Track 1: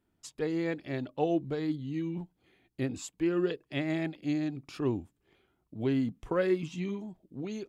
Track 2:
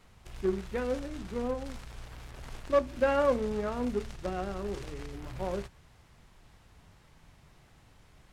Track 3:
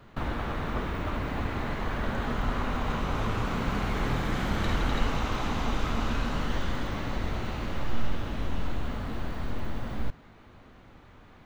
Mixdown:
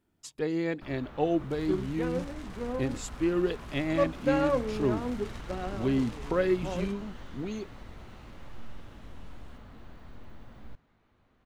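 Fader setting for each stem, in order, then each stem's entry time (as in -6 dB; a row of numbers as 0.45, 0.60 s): +1.5, -1.5, -15.5 dB; 0.00, 1.25, 0.65 s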